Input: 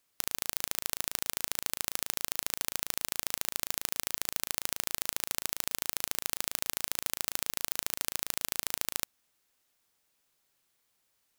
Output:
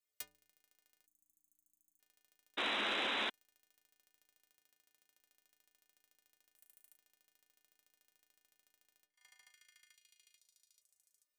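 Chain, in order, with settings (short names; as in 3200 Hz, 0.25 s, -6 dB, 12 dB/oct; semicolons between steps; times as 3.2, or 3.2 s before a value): graphic EQ 125/250/500/1000/2000 Hz -10/-7/+5/-8/+4 dB; delay with a stepping band-pass 0.437 s, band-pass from 1200 Hz, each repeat 0.7 oct, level -11 dB; flipped gate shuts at -21 dBFS, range -29 dB; metallic resonator 89 Hz, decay 0.68 s, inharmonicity 0.03; 4.51–5.2 HPF 42 Hz; 6.56–6.97 resonant high shelf 7200 Hz +9 dB, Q 1.5; sample leveller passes 1; 1.06–2 brick-wall FIR band-stop 350–6000 Hz; 2.57–3.3 painted sound noise 200–4000 Hz -35 dBFS; soft clip -27.5 dBFS, distortion -20 dB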